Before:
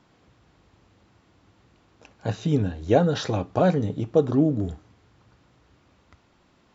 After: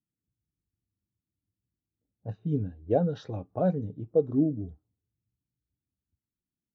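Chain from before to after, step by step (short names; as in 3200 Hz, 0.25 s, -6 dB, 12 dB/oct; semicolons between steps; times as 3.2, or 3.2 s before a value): low-pass opened by the level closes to 300 Hz, open at -20 dBFS; spectral expander 1.5:1; gain -6.5 dB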